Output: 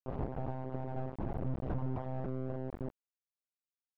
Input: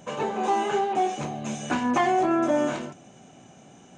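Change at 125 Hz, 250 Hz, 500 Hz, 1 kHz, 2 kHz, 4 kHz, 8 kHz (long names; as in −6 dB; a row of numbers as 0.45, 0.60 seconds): +2.5 dB, −14.0 dB, −15.5 dB, −21.5 dB, −25.0 dB, below −30 dB, below −40 dB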